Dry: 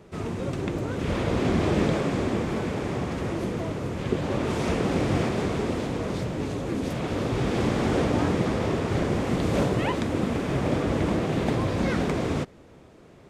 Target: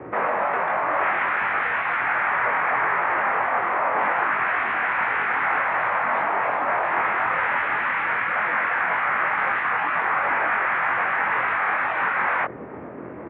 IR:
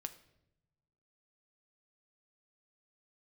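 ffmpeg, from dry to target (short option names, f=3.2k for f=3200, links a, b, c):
-filter_complex "[0:a]afftfilt=real='re*lt(hypot(re,im),0.0447)':imag='im*lt(hypot(re,im),0.0447)':win_size=1024:overlap=0.75,asplit=2[a][b];[b]highpass=f=720:p=1,volume=24dB,asoftclip=type=tanh:threshold=-11dB[c];[a][c]amix=inputs=2:normalize=0,lowpass=f=1.2k:p=1,volume=-6dB,asplit=2[d][e];[e]acrusher=bits=4:mix=0:aa=0.5,volume=-3.5dB[f];[d][f]amix=inputs=2:normalize=0,asplit=2[g][h];[h]adelay=22,volume=-2.5dB[i];[g][i]amix=inputs=2:normalize=0,highpass=f=160:t=q:w=0.5412,highpass=f=160:t=q:w=1.307,lowpass=f=2.2k:t=q:w=0.5176,lowpass=f=2.2k:t=q:w=0.7071,lowpass=f=2.2k:t=q:w=1.932,afreqshift=-61,volume=2dB"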